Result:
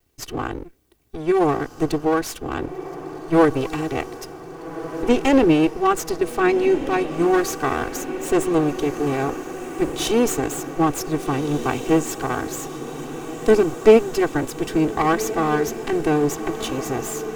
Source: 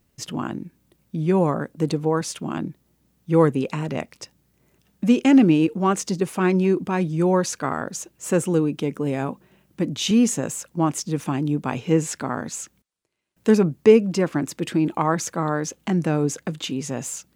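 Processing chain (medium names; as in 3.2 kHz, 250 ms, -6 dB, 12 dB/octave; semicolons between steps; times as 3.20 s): comb filter that takes the minimum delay 2.6 ms; echo that smears into a reverb 1557 ms, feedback 69%, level -12 dB; trim +1.5 dB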